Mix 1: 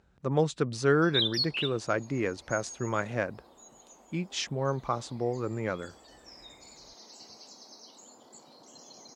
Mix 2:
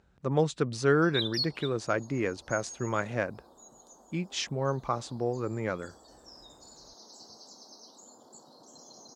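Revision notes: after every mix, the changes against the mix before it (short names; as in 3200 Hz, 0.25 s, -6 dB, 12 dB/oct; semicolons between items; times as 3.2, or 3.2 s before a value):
background: add Butterworth band-stop 2400 Hz, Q 0.96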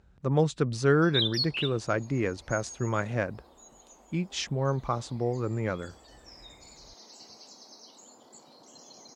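speech: add low shelf 120 Hz +10 dB; background: remove Butterworth band-stop 2400 Hz, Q 0.96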